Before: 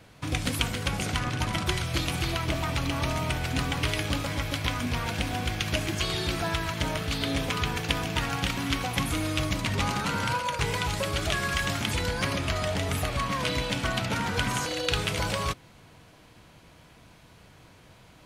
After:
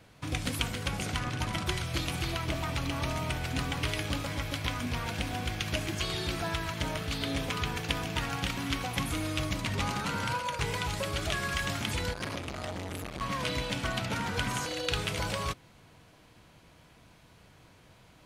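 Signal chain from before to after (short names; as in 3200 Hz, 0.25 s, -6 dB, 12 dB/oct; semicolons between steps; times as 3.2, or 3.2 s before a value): 12.13–13.21 core saturation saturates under 1300 Hz; gain -4 dB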